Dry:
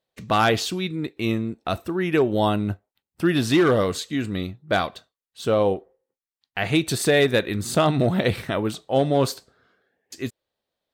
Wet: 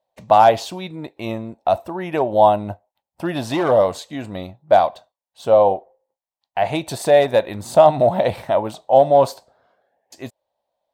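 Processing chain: high-order bell 740 Hz +15.5 dB 1.1 oct; trim -4 dB

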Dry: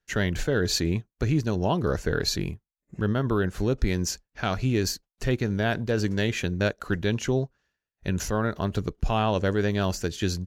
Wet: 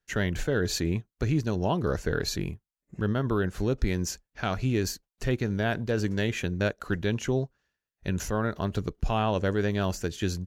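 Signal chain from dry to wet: dynamic bell 4.6 kHz, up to -4 dB, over -43 dBFS, Q 1.8; trim -2 dB

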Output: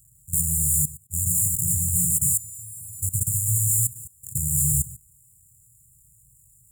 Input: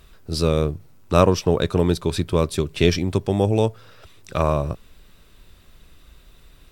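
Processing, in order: square wave that keeps the level; 2.17–3.02 s: inharmonic resonator 110 Hz, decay 0.67 s, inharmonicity 0.002; in parallel at -5.5 dB: overload inside the chain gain 17.5 dB; on the sum: frequency weighting A; 0.69–1.59 s: compression 1.5:1, threshold -28 dBFS, peak gain reduction 8 dB; brick-wall FIR band-stop 150–6900 Hz; gated-style reverb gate 230 ms rising, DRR -2.5 dB; level held to a coarse grid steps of 18 dB; loudness maximiser +24 dB; trim -8.5 dB

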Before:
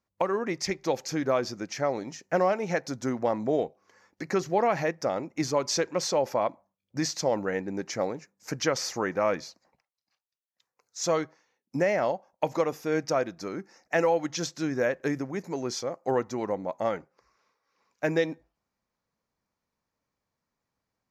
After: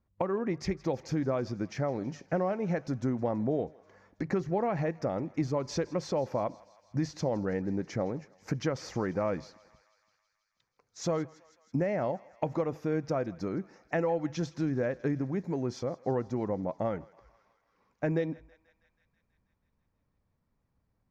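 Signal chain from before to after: RIAA curve playback; compression 2:1, threshold -32 dBFS, peak gain reduction 9 dB; on a send: thinning echo 162 ms, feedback 75%, high-pass 760 Hz, level -20.5 dB

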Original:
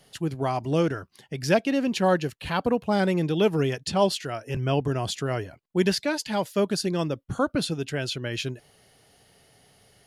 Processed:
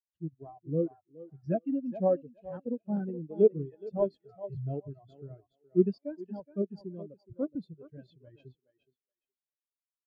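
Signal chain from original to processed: reverb removal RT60 1.4 s; thinning echo 419 ms, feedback 44%, high-pass 290 Hz, level -5 dB; in parallel at -7 dB: decimation with a swept rate 35×, swing 60% 0.8 Hz; on the sum: spectral contrast expander 2.5:1; trim -4.5 dB

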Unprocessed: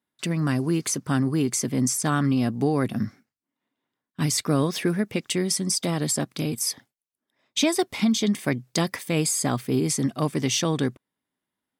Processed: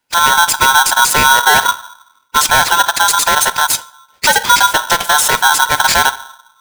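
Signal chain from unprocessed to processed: high-pass 140 Hz 12 dB/octave; time stretch by phase-locked vocoder 0.56×; on a send at -15 dB: reverberation RT60 0.60 s, pre-delay 6 ms; on the sum: loudness maximiser +16 dB; polarity switched at an audio rate 1.2 kHz; trim -1 dB

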